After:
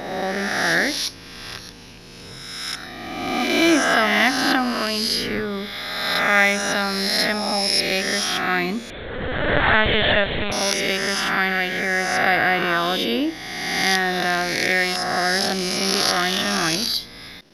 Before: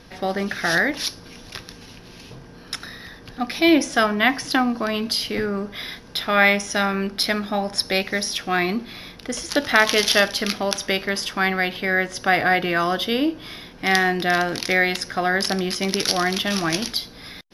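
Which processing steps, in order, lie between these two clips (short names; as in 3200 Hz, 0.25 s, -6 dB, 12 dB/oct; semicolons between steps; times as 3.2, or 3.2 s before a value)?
spectral swells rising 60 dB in 1.70 s; 8.9–10.52 LPC vocoder at 8 kHz pitch kept; gain -3 dB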